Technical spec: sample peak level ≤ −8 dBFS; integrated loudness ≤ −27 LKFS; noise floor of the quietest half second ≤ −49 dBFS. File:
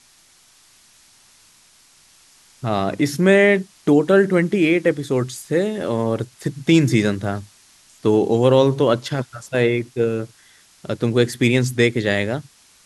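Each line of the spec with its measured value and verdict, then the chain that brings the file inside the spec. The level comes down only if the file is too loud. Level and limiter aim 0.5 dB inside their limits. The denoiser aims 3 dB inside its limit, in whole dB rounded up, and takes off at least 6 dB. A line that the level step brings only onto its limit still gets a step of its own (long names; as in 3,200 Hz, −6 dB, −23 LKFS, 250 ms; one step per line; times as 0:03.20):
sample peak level −2.0 dBFS: out of spec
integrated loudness −19.0 LKFS: out of spec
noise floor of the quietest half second −54 dBFS: in spec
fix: level −8.5 dB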